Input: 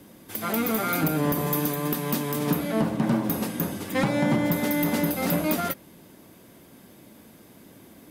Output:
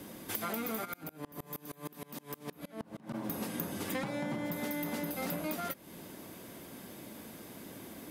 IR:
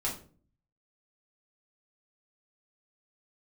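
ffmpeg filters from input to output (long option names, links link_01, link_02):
-filter_complex "[0:a]lowshelf=frequency=230:gain=-4.5,acompressor=threshold=-37dB:ratio=10,asplit=3[link_01][link_02][link_03];[link_01]afade=type=out:start_time=0.84:duration=0.02[link_04];[link_02]aeval=exprs='val(0)*pow(10,-30*if(lt(mod(-6.4*n/s,1),2*abs(-6.4)/1000),1-mod(-6.4*n/s,1)/(2*abs(-6.4)/1000),(mod(-6.4*n/s,1)-2*abs(-6.4)/1000)/(1-2*abs(-6.4)/1000))/20)':channel_layout=same,afade=type=in:start_time=0.84:duration=0.02,afade=type=out:start_time=3.13:duration=0.02[link_05];[link_03]afade=type=in:start_time=3.13:duration=0.02[link_06];[link_04][link_05][link_06]amix=inputs=3:normalize=0,volume=3.5dB"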